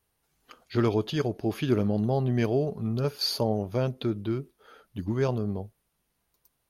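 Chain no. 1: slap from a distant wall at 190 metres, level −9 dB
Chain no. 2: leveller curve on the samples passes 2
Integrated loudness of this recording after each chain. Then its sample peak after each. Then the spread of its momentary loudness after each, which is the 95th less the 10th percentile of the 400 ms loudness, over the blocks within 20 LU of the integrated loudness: −28.5, −22.5 LKFS; −11.5, −11.5 dBFS; 12, 8 LU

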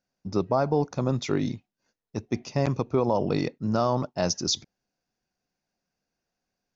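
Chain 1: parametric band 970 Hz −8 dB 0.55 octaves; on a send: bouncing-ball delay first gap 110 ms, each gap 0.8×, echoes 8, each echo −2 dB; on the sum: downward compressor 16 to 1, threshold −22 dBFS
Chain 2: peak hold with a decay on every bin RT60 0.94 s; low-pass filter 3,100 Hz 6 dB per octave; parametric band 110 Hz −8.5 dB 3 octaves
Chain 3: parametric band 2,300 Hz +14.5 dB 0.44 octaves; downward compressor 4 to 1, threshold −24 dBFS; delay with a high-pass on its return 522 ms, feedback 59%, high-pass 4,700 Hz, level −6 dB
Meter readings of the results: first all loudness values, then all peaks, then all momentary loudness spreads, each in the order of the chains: −28.0, −28.0, −31.0 LKFS; −12.5, −12.0, −12.0 dBFS; 7, 13, 18 LU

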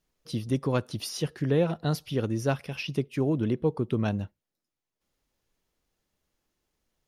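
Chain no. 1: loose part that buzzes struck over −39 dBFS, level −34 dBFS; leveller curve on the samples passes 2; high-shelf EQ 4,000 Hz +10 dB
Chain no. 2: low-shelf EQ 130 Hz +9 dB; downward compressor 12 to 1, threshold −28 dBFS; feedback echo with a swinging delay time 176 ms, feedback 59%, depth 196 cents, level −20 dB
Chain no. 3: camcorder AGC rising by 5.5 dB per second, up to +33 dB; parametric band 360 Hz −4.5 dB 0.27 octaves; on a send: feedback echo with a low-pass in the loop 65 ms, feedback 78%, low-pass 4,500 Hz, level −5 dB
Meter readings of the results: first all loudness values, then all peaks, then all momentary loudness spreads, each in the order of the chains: −23.0, −34.0, −27.0 LKFS; −9.5, −19.0, −12.0 dBFS; 3, 3, 10 LU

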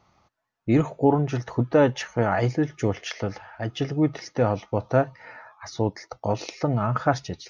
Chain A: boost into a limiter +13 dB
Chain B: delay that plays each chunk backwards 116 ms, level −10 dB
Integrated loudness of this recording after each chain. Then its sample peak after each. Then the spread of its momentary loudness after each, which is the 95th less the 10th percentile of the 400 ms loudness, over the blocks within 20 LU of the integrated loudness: −15.0, −24.5 LKFS; −1.0, −5.5 dBFS; 9, 12 LU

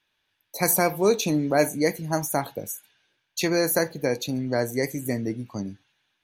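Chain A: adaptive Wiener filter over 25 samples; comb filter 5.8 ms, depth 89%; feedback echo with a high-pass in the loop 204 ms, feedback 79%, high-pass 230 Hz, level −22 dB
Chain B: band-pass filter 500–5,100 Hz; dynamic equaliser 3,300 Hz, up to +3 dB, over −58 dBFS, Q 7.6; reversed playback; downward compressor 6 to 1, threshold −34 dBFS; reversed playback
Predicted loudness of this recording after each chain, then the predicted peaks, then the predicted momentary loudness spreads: −23.0, −39.0 LKFS; −3.0, −21.5 dBFS; 14, 9 LU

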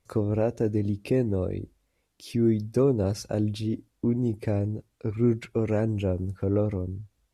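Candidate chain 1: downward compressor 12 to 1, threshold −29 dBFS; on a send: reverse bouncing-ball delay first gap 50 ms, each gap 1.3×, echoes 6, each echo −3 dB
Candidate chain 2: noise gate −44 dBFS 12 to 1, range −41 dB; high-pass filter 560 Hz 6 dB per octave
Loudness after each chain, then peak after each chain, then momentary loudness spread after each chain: −32.5, −34.0 LKFS; −16.5, −16.0 dBFS; 4, 11 LU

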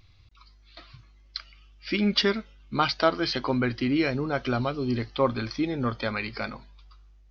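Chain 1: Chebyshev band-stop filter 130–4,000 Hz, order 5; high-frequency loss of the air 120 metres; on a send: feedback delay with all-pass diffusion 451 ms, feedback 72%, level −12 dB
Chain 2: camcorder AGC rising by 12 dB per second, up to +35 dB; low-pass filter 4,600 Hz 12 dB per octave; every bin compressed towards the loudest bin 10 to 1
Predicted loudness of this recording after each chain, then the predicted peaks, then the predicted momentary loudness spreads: −38.5, −28.5 LKFS; −17.0, −5.0 dBFS; 18, 7 LU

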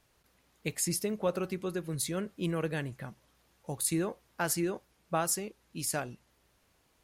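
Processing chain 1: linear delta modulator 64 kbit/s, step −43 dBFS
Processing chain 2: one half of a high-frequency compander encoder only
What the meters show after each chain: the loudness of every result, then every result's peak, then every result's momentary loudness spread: −35.5, −33.5 LKFS; −18.0, −17.0 dBFS; 15, 12 LU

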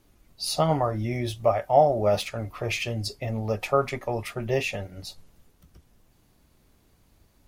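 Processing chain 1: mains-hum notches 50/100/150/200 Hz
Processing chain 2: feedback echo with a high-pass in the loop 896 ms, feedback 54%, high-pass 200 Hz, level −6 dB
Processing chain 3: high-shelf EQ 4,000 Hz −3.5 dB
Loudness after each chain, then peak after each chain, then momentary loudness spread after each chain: −26.0, −26.0, −26.5 LKFS; −6.0, −6.5, −6.5 dBFS; 12, 19, 13 LU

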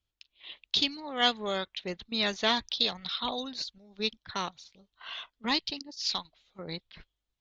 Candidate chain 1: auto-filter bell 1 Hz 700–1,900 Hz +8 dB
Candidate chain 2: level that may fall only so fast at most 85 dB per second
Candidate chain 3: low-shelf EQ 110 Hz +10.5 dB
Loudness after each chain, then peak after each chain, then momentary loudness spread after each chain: −30.0, −30.5, −31.0 LKFS; −8.0, −11.0, −11.5 dBFS; 16, 17, 15 LU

